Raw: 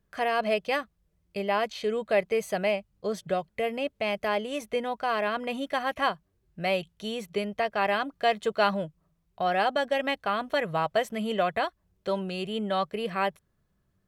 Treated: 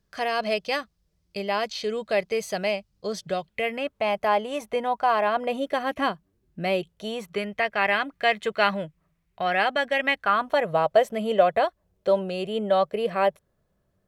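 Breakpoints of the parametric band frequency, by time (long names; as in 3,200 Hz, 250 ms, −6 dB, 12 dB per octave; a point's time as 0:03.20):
parametric band +9.5 dB 0.94 octaves
0:03.32 5,000 Hz
0:04.05 870 Hz
0:05.25 870 Hz
0:06.04 260 Hz
0:06.67 260 Hz
0:07.51 2,100 Hz
0:10.11 2,100 Hz
0:10.72 570 Hz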